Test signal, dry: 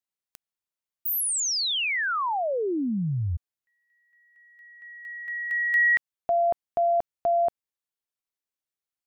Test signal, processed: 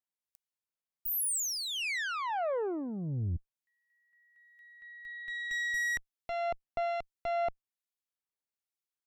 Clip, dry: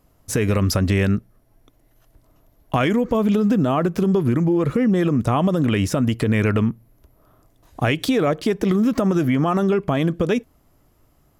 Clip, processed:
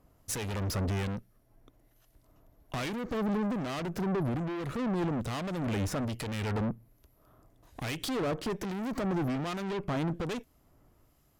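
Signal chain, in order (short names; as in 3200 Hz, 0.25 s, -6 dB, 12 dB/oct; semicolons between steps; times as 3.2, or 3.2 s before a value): tube stage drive 28 dB, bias 0.65; harmonic tremolo 1.2 Hz, depth 50%, crossover 2000 Hz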